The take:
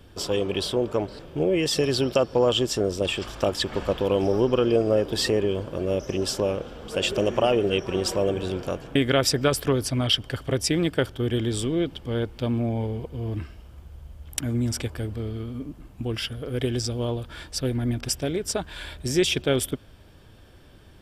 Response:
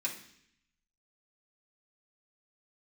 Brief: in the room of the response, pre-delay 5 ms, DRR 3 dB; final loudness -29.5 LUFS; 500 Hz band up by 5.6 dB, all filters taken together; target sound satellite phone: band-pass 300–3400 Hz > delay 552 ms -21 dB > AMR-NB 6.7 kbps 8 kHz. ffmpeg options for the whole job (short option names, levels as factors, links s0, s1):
-filter_complex "[0:a]equalizer=f=500:t=o:g=7.5,asplit=2[s0][s1];[1:a]atrim=start_sample=2205,adelay=5[s2];[s1][s2]afir=irnorm=-1:irlink=0,volume=0.501[s3];[s0][s3]amix=inputs=2:normalize=0,highpass=300,lowpass=3400,aecho=1:1:552:0.0891,volume=0.398" -ar 8000 -c:a libopencore_amrnb -b:a 6700